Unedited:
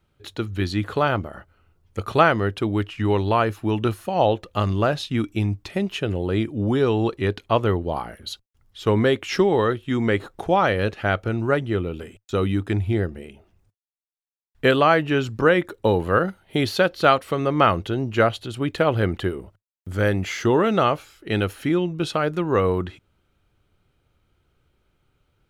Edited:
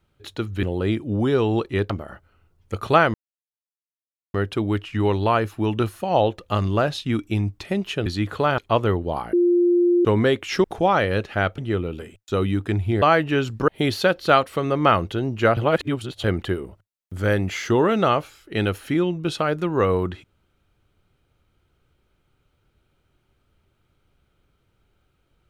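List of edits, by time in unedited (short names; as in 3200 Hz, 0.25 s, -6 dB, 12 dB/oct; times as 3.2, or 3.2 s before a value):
0.63–1.15 swap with 6.11–7.38
2.39 insert silence 1.20 s
8.13–8.85 bleep 350 Hz -14 dBFS
9.44–10.32 cut
11.26–11.59 cut
13.03–14.81 cut
15.47–16.43 cut
18.32–18.99 reverse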